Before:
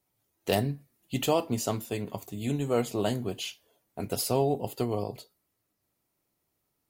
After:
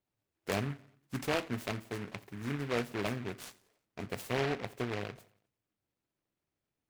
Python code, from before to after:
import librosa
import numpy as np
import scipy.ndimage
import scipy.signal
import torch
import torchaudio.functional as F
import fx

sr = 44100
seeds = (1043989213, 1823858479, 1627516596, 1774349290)

y = fx.high_shelf(x, sr, hz=3400.0, db=-10.0)
y = fx.echo_feedback(y, sr, ms=88, feedback_pct=50, wet_db=-21.5)
y = fx.noise_mod_delay(y, sr, seeds[0], noise_hz=1500.0, depth_ms=0.18)
y = y * librosa.db_to_amplitude(-6.5)